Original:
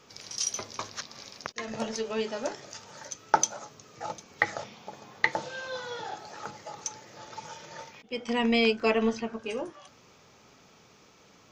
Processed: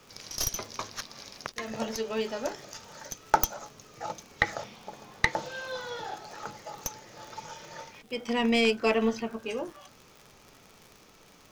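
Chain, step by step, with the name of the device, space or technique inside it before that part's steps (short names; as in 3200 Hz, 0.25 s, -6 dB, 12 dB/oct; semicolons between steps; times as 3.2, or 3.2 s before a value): record under a worn stylus (tracing distortion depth 0.13 ms; crackle 69/s -39 dBFS; pink noise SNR 31 dB)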